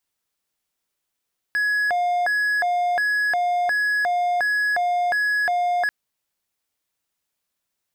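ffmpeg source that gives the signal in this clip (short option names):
-f lavfi -i "aevalsrc='0.15*(1-4*abs(mod((1194.5*t+485.5/1.4*(0.5-abs(mod(1.4*t,1)-0.5)))+0.25,1)-0.5))':d=4.34:s=44100"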